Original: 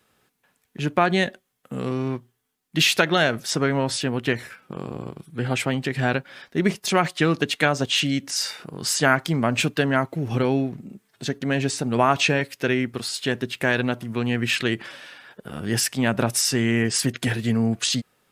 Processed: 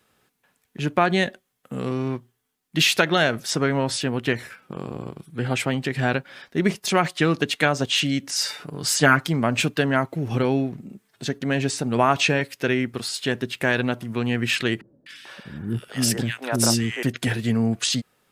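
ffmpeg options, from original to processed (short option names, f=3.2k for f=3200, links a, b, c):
-filter_complex "[0:a]asettb=1/sr,asplit=3[a][b][c];[a]atrim=end=8.384[d];[b]atrim=start=8.38:end=9.28,asetpts=PTS-STARTPTS,afade=t=in:d=0.004:c=qsin,afade=t=out:st=0.896:d=0.004:c=qsin,aecho=1:1:6.9:0.59,atrim=end_sample=39690[e];[c]atrim=start=9.276[f];[d][e]acrossfade=d=0.004:c1=hsin:c2=qsin[g];[g][f]acrossfade=d=0.004:c1=qsin:c2=hsin,asettb=1/sr,asplit=3[h][i][j];[h]atrim=end=14.814[k];[i]atrim=start=14.81:end=17.03,asetpts=PTS-STARTPTS,afade=t=in:d=0.004:c=qsin,afade=t=out:st=2.216:d=0.004:c=qsin,acrossover=split=370|1700[l][m][n];[n]adelay=250[o];[m]adelay=440[p];[l][p][o]amix=inputs=3:normalize=0,atrim=end_sample=97902[q];[j]atrim=start=17.026[r];[k][q]acrossfade=d=0.004:c1=hsin:c2=qsin[s];[s][r]acrossfade=d=0.004:c1=qsin:c2=hsin"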